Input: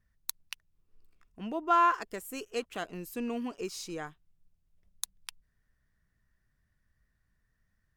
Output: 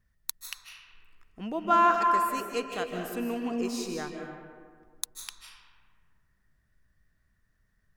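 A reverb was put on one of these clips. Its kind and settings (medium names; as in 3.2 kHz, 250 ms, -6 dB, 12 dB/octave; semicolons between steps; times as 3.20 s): algorithmic reverb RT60 1.8 s, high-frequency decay 0.5×, pre-delay 115 ms, DRR 2.5 dB; trim +2 dB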